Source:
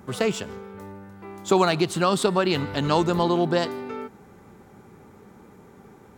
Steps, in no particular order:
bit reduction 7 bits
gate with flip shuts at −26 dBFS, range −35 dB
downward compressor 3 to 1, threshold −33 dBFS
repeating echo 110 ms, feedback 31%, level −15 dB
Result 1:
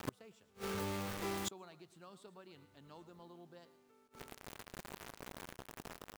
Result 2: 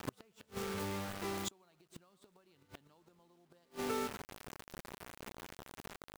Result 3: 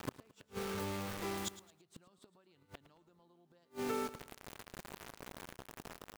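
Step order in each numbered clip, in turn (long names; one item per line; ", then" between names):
bit reduction, then repeating echo, then gate with flip, then downward compressor
repeating echo, then downward compressor, then bit reduction, then gate with flip
bit reduction, then downward compressor, then gate with flip, then repeating echo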